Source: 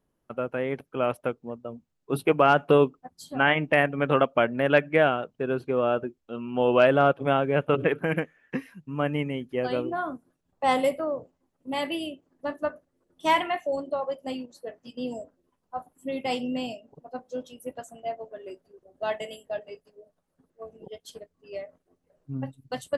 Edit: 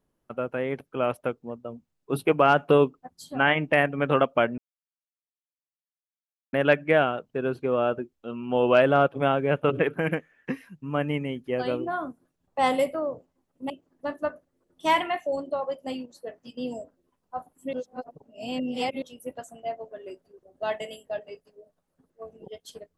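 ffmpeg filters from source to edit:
-filter_complex "[0:a]asplit=5[a][b][c][d][e];[a]atrim=end=4.58,asetpts=PTS-STARTPTS,afade=t=out:st=4.576:d=0.004:c=hsin,apad=pad_dur=1.95[f];[b]atrim=start=4.58:end=11.752,asetpts=PTS-STARTPTS,afade=t=in:d=0.004:c=hsin[g];[c]atrim=start=12.098:end=16.132[h];[d]atrim=start=16.128:end=17.422,asetpts=PTS-STARTPTS,areverse[i];[e]atrim=start=17.418[j];[f][g]concat=n=2:v=0:a=1[k];[k][h]acrossfade=d=0.004:c1=hsin:c2=hsin[l];[l][i]acrossfade=d=0.004:c1=hsin:c2=hsin[m];[m][j]acrossfade=d=0.004:c1=hsin:c2=hsin"

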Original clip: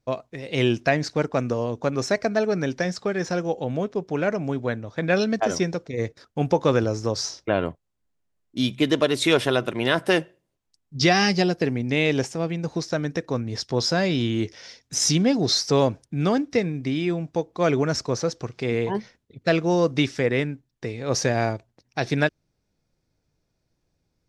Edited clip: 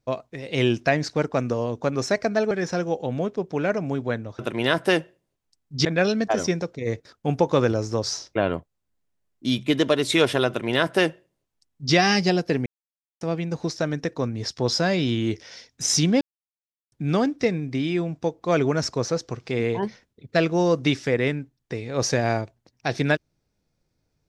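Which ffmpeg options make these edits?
-filter_complex "[0:a]asplit=8[a][b][c][d][e][f][g][h];[a]atrim=end=2.512[i];[b]atrim=start=3.088:end=4.972[j];[c]atrim=start=9.598:end=11.062[k];[d]atrim=start=4.968:end=11.78,asetpts=PTS-STARTPTS,afade=t=out:st=6.808:d=0.004:c=hsin[l];[e]atrim=start=11.78:end=12.33,asetpts=PTS-STARTPTS,volume=0[m];[f]atrim=start=12.33:end=15.33,asetpts=PTS-STARTPTS,afade=t=in:d=0.004:c=hsin,afade=t=out:st=2.996:d=0.004:c=hsin[n];[g]atrim=start=15.33:end=16.04,asetpts=PTS-STARTPTS,volume=0[o];[h]atrim=start=16.04,asetpts=PTS-STARTPTS,afade=t=in:d=0.004:c=hsin[p];[i][j]acrossfade=d=0.004:c1=hsin:c2=hsin[q];[q][k]acrossfade=d=0.004:c1=hsin:c2=hsin[r];[l][m][n][o][p]concat=n=5:v=0:a=1[s];[r][s]acrossfade=d=0.004:c1=hsin:c2=hsin"

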